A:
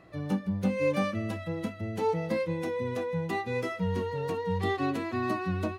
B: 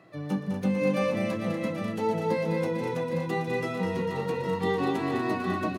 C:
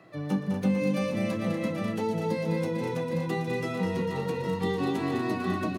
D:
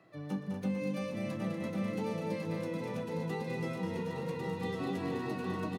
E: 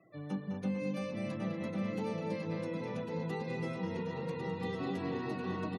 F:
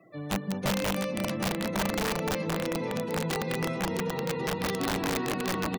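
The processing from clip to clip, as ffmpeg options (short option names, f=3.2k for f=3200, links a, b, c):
-filter_complex "[0:a]highpass=f=120:w=0.5412,highpass=f=120:w=1.3066,asplit=2[a][b];[b]aecho=0:1:122|204|240|448|601|811:0.141|0.501|0.398|0.355|0.119|0.398[c];[a][c]amix=inputs=2:normalize=0"
-filter_complex "[0:a]acrossover=split=340|3000[a][b][c];[b]acompressor=threshold=-33dB:ratio=6[d];[a][d][c]amix=inputs=3:normalize=0,volume=1.5dB"
-af "aecho=1:1:1099:0.631,volume=-8.5dB"
-af "afftfilt=real='re*gte(hypot(re,im),0.00141)':imag='im*gte(hypot(re,im),0.00141)':win_size=1024:overlap=0.75,volume=-1dB"
-af "highpass=130,aeval=exprs='(mod(29.9*val(0)+1,2)-1)/29.9':c=same,volume=7.5dB"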